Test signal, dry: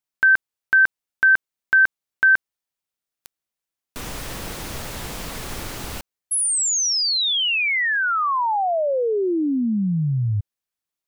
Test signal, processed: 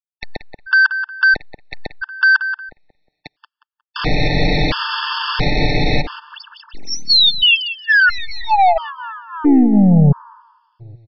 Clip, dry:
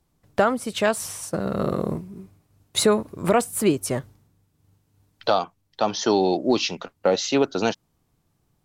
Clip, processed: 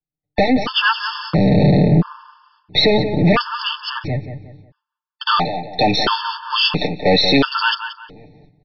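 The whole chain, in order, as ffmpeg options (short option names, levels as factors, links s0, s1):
-filter_complex "[0:a]agate=range=0.00562:threshold=0.00562:ratio=16:release=447:detection=rms,aecho=1:1:6.7:0.75,acrossover=split=250|900[s0][s1][s2];[s1]acompressor=threshold=0.0141:ratio=4:release=180[s3];[s0][s3][s2]amix=inputs=3:normalize=0,apsyclip=12.6,aeval=exprs='1.12*(cos(1*acos(clip(val(0)/1.12,-1,1)))-cos(1*PI/2))+0.158*(cos(4*acos(clip(val(0)/1.12,-1,1)))-cos(4*PI/2))+0.00891*(cos(5*acos(clip(val(0)/1.12,-1,1)))-cos(5*PI/2))':c=same,asoftclip=type=tanh:threshold=0.708,asplit=2[s4][s5];[s5]adelay=180,lowpass=f=2300:p=1,volume=0.376,asplit=2[s6][s7];[s7]adelay=180,lowpass=f=2300:p=1,volume=0.35,asplit=2[s8][s9];[s9]adelay=180,lowpass=f=2300:p=1,volume=0.35,asplit=2[s10][s11];[s11]adelay=180,lowpass=f=2300:p=1,volume=0.35[s12];[s6][s8][s10][s12]amix=inputs=4:normalize=0[s13];[s4][s13]amix=inputs=2:normalize=0,aresample=11025,aresample=44100,afftfilt=real='re*gt(sin(2*PI*0.74*pts/sr)*(1-2*mod(floor(b*sr/1024/890),2)),0)':imag='im*gt(sin(2*PI*0.74*pts/sr)*(1-2*mod(floor(b*sr/1024/890),2)),0)':win_size=1024:overlap=0.75,volume=0.668"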